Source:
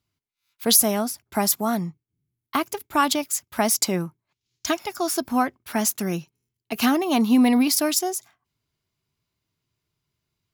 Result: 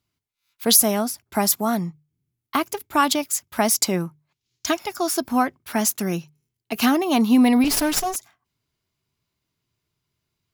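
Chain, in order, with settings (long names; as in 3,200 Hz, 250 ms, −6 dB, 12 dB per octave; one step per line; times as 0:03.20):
0:07.64–0:08.16: lower of the sound and its delayed copy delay 7 ms
mains-hum notches 50/100/150 Hz
level +1.5 dB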